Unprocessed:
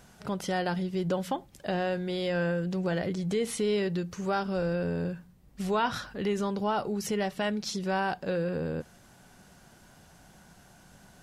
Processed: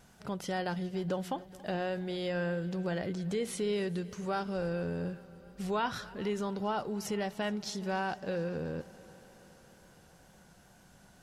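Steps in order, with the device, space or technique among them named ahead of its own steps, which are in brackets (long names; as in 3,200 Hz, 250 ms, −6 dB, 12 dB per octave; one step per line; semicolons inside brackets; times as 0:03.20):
multi-head tape echo (echo machine with several playback heads 140 ms, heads second and third, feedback 65%, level −22.5 dB; tape wow and flutter 22 cents)
level −4.5 dB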